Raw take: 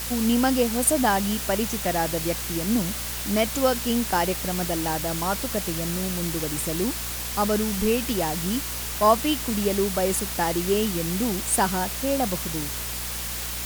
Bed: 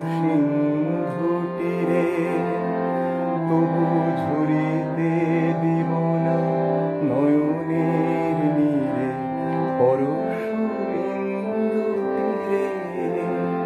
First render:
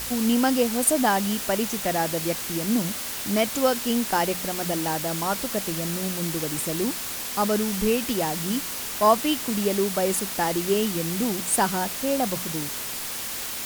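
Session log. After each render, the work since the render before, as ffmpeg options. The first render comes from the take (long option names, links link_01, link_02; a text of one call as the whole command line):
ffmpeg -i in.wav -af "bandreject=frequency=60:width_type=h:width=4,bandreject=frequency=120:width_type=h:width=4,bandreject=frequency=180:width_type=h:width=4" out.wav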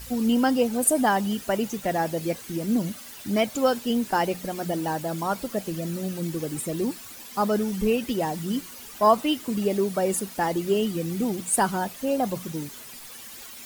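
ffmpeg -i in.wav -af "afftdn=noise_reduction=13:noise_floor=-32" out.wav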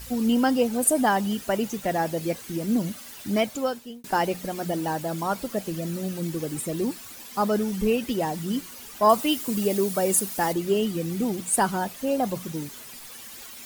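ffmpeg -i in.wav -filter_complex "[0:a]asettb=1/sr,asplit=3[link_01][link_02][link_03];[link_01]atrim=end=9.094[link_04];[link_02]atrim=start=9.09:end=10.53,asetpts=PTS-STARTPTS,afade=type=in:duration=0.004:curve=qsin,afade=type=out:start_time=1.436:duration=0.004:curve=qsin,highshelf=frequency=5900:gain=9.5[link_05];[link_03]atrim=start=10.526[link_06];[link_04][link_05]acrossfade=duration=0.004:curve1=hsin:curve2=qsin[link_07];[link_07][link_06]acrossfade=duration=0.004:curve1=qsin:curve2=hsin,asplit=2[link_08][link_09];[link_08]atrim=end=4.04,asetpts=PTS-STARTPTS,afade=type=out:start_time=3.37:duration=0.67[link_10];[link_09]atrim=start=4.04,asetpts=PTS-STARTPTS,afade=type=in:duration=0.004:curve=hsin[link_11];[link_10][link_11]concat=n=2:v=0:a=1" out.wav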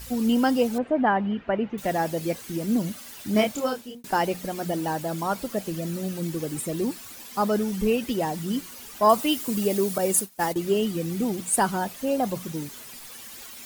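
ffmpeg -i in.wav -filter_complex "[0:a]asettb=1/sr,asplit=3[link_01][link_02][link_03];[link_01]atrim=end=0.784[link_04];[link_02]atrim=start=0.78:end=1.78,asetpts=PTS-STARTPTS,afade=type=in:duration=0.004:curve=qsin,afade=type=out:start_time=0.996:duration=0.004:curve=qsin,lowpass=frequency=2500:width=0.5412,lowpass=frequency=2500:width=1.3066[link_05];[link_03]atrim=start=1.776[link_06];[link_04][link_05]acrossfade=duration=0.004:curve1=hsin:curve2=qsin[link_07];[link_07][link_06]acrossfade=duration=0.004:curve1=qsin:curve2=hsin,asettb=1/sr,asplit=3[link_08][link_09][link_10];[link_08]atrim=end=3.324[link_11];[link_09]atrim=start=3.32:end=3.95,asetpts=PTS-STARTPTS,afade=type=in:duration=0.004:curve=qsin,afade=type=out:start_time=0.626:duration=0.004:curve=qsin,asplit=2[link_12][link_13];[link_13]adelay=28,volume=-3dB[link_14];[link_12][link_14]amix=inputs=2:normalize=0,atrim=end_sample=27783[link_15];[link_10]atrim=start=3.946[link_16];[link_11][link_15]acrossfade=duration=0.004:curve1=hsin:curve2=qsin[link_17];[link_17][link_16]acrossfade=duration=0.004:curve1=qsin:curve2=hsin,asettb=1/sr,asplit=3[link_18][link_19][link_20];[link_18]atrim=end=9.984[link_21];[link_19]atrim=start=9.98:end=10.56,asetpts=PTS-STARTPTS,afade=type=in:duration=0.004:curve=qsin,afade=type=out:start_time=0.576:duration=0.004:curve=qsin,agate=range=-33dB:threshold=-23dB:ratio=3:release=100:detection=peak[link_22];[link_20]atrim=start=10.556[link_23];[link_21][link_22]acrossfade=duration=0.004:curve1=hsin:curve2=qsin[link_24];[link_24][link_23]acrossfade=duration=0.004:curve1=qsin:curve2=hsin" out.wav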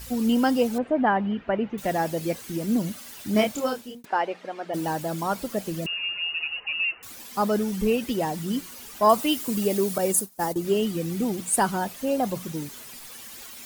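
ffmpeg -i in.wav -filter_complex "[0:a]asplit=3[link_01][link_02][link_03];[link_01]afade=type=out:start_time=4.04:duration=0.02[link_04];[link_02]highpass=460,lowpass=2600,afade=type=in:start_time=4.04:duration=0.02,afade=type=out:start_time=4.73:duration=0.02[link_05];[link_03]afade=type=in:start_time=4.73:duration=0.02[link_06];[link_04][link_05][link_06]amix=inputs=3:normalize=0,asettb=1/sr,asplit=3[link_07][link_08][link_09];[link_07]atrim=end=5.864[link_10];[link_08]atrim=start=5.86:end=7.03,asetpts=PTS-STARTPTS,afade=type=in:duration=0.004:curve=qsin,afade=type=out:start_time=1.166:duration=0.004:curve=qsin,lowpass=frequency=2600:width_type=q:width=0.5098,lowpass=frequency=2600:width_type=q:width=0.6013,lowpass=frequency=2600:width_type=q:width=0.9,lowpass=frequency=2600:width_type=q:width=2.563,afreqshift=-3000[link_11];[link_09]atrim=start=7.026[link_12];[link_10][link_11]acrossfade=duration=0.004:curve1=hsin:curve2=qsin[link_13];[link_13][link_12]acrossfade=duration=0.004:curve1=qsin:curve2=hsin,asettb=1/sr,asplit=3[link_14][link_15][link_16];[link_14]atrim=end=10.124[link_17];[link_15]atrim=start=10.12:end=10.65,asetpts=PTS-STARTPTS,afade=type=in:duration=0.004:curve=qsin,afade=type=out:start_time=0.526:duration=0.004:curve=qsin,equalizer=frequency=2500:width_type=o:width=1.5:gain=-8[link_18];[link_16]atrim=start=10.646[link_19];[link_17][link_18]acrossfade=duration=0.004:curve1=hsin:curve2=qsin[link_20];[link_20][link_19]acrossfade=duration=0.004:curve1=qsin:curve2=hsin" out.wav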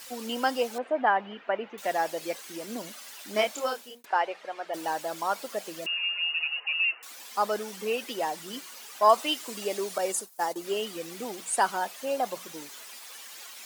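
ffmpeg -i in.wav -filter_complex "[0:a]highpass=570,acrossover=split=8300[link_01][link_02];[link_02]acompressor=threshold=-46dB:ratio=4:attack=1:release=60[link_03];[link_01][link_03]amix=inputs=2:normalize=0" out.wav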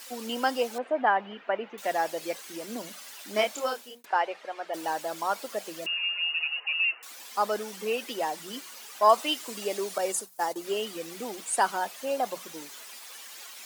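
ffmpeg -i in.wav -af "highpass=130,bandreject=frequency=60:width_type=h:width=6,bandreject=frequency=120:width_type=h:width=6,bandreject=frequency=180:width_type=h:width=6" out.wav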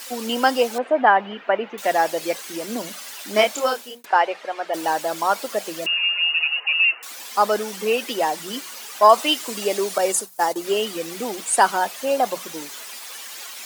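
ffmpeg -i in.wav -af "volume=8.5dB,alimiter=limit=-2dB:level=0:latency=1" out.wav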